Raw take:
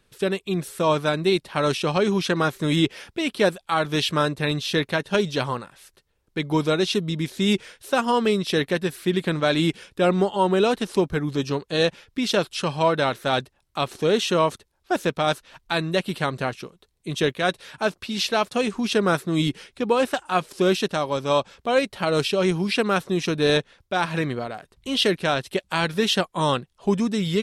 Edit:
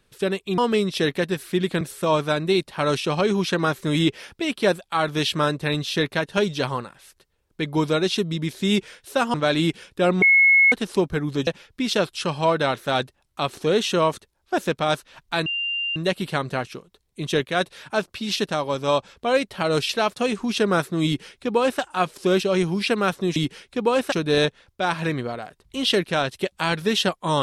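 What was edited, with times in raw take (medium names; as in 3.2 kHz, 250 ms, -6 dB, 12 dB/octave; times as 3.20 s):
8.11–9.34 s: move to 0.58 s
10.22–10.72 s: bleep 2.18 kHz -11.5 dBFS
11.47–11.85 s: delete
15.84 s: add tone 2.79 kHz -23 dBFS 0.50 s
19.40–20.16 s: copy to 23.24 s
20.78–22.31 s: move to 18.24 s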